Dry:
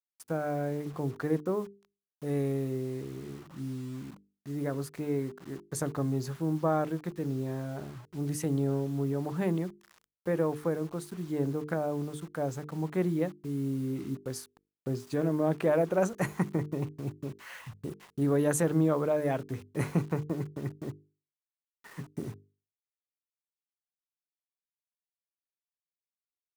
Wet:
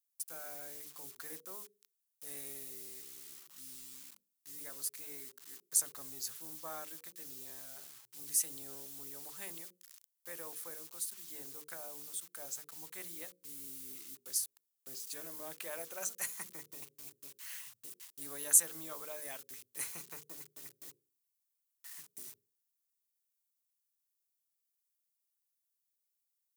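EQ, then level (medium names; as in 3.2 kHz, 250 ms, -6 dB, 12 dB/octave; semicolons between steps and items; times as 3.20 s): differentiator; treble shelf 2.8 kHz +8 dB; hum notches 60/120/180/240/300/360/420/480/540 Hz; +1.0 dB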